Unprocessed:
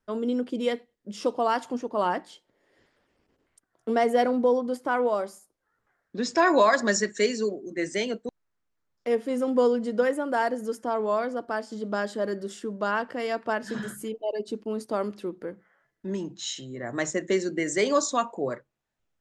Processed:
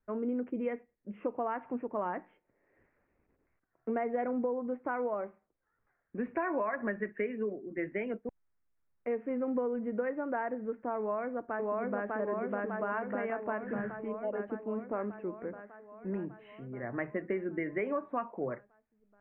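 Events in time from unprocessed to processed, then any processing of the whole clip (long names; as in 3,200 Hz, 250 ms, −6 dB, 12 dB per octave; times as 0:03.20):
0:10.99–0:12.14: delay throw 600 ms, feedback 70%, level 0 dB
whole clip: downward compressor, threshold −24 dBFS; Butterworth low-pass 2,500 Hz 72 dB per octave; low-shelf EQ 94 Hz +7.5 dB; level −5.5 dB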